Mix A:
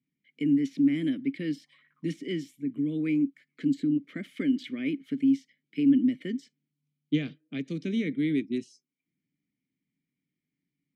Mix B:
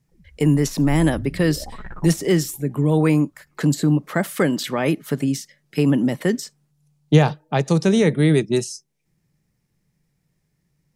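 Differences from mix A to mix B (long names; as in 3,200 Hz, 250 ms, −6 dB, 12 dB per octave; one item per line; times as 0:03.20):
background: remove four-pole ladder high-pass 1,000 Hz, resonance 80%
master: remove formant filter i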